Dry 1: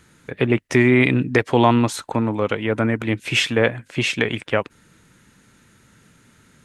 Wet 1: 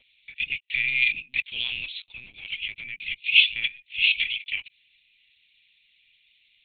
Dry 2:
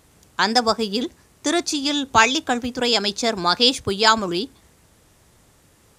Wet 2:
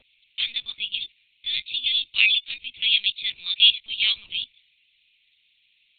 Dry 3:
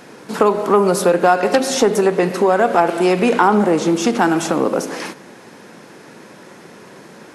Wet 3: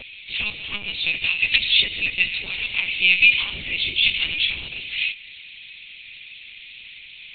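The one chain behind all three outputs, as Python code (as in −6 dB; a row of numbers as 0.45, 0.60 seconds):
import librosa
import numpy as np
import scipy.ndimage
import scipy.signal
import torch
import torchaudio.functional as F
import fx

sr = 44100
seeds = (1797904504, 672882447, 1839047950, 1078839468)

y = scipy.signal.sosfilt(scipy.signal.ellip(4, 1.0, 40, 2400.0, 'highpass', fs=sr, output='sos'), x)
y = fx.vibrato(y, sr, rate_hz=2.4, depth_cents=21.0)
y = fx.lpc_vocoder(y, sr, seeds[0], excitation='pitch_kept', order=10)
y = librosa.util.normalize(y) * 10.0 ** (-3 / 20.0)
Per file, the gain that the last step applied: +4.5, +5.5, +14.5 decibels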